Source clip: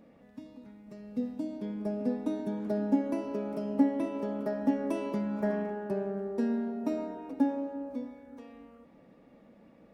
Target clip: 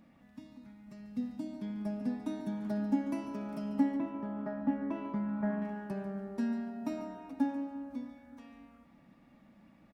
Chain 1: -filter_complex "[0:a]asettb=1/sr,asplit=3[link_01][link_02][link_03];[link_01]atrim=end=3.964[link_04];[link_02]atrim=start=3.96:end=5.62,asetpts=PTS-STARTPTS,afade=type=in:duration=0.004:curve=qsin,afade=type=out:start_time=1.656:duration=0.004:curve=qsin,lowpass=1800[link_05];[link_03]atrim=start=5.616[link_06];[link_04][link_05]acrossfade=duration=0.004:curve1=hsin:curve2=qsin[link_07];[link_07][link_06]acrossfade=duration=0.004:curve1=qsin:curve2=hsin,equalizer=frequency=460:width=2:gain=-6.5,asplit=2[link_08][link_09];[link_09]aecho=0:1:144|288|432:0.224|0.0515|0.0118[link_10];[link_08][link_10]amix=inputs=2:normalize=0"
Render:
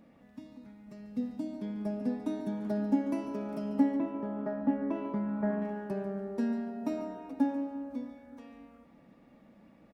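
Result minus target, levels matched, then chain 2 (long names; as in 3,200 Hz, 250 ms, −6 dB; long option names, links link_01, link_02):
500 Hz band +3.0 dB
-filter_complex "[0:a]asettb=1/sr,asplit=3[link_01][link_02][link_03];[link_01]atrim=end=3.964[link_04];[link_02]atrim=start=3.96:end=5.62,asetpts=PTS-STARTPTS,afade=type=in:duration=0.004:curve=qsin,afade=type=out:start_time=1.656:duration=0.004:curve=qsin,lowpass=1800[link_05];[link_03]atrim=start=5.616[link_06];[link_04][link_05]acrossfade=duration=0.004:curve1=hsin:curve2=qsin[link_07];[link_07][link_06]acrossfade=duration=0.004:curve1=qsin:curve2=hsin,equalizer=frequency=460:width=2:gain=-17,asplit=2[link_08][link_09];[link_09]aecho=0:1:144|288|432:0.224|0.0515|0.0118[link_10];[link_08][link_10]amix=inputs=2:normalize=0"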